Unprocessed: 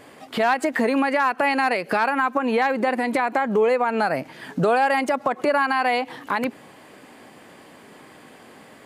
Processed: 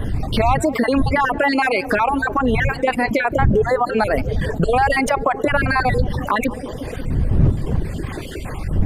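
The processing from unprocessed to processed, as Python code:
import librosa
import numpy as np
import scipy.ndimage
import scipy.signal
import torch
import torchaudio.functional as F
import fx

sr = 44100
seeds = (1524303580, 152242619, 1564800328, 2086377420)

y = fx.spec_dropout(x, sr, seeds[0], share_pct=39)
y = fx.dmg_wind(y, sr, seeds[1], corner_hz=110.0, level_db=-25.0)
y = fx.echo_banded(y, sr, ms=178, feedback_pct=77, hz=400.0, wet_db=-10.0)
y = fx.dereverb_blind(y, sr, rt60_s=1.4)
y = fx.env_flatten(y, sr, amount_pct=50)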